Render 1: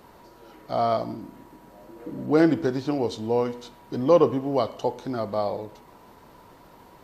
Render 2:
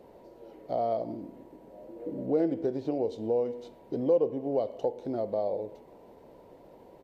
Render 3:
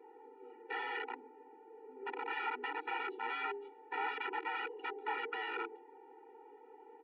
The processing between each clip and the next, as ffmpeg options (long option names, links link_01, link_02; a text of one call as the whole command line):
ffmpeg -i in.wav -af "firequalizer=gain_entry='entry(110,0);entry(520,11);entry(1200,-10);entry(2100,-3);entry(5000,-7)':delay=0.05:min_phase=1,acompressor=threshold=-23dB:ratio=2,volume=-6.5dB" out.wav
ffmpeg -i in.wav -af "aeval=exprs='(mod(31.6*val(0)+1,2)-1)/31.6':channel_layout=same,highpass=frequency=570:width_type=q:width=0.5412,highpass=frequency=570:width_type=q:width=1.307,lowpass=frequency=2600:width_type=q:width=0.5176,lowpass=frequency=2600:width_type=q:width=0.7071,lowpass=frequency=2600:width_type=q:width=1.932,afreqshift=-80,afftfilt=real='re*eq(mod(floor(b*sr/1024/250),2),1)':imag='im*eq(mod(floor(b*sr/1024/250),2),1)':win_size=1024:overlap=0.75,volume=3.5dB" out.wav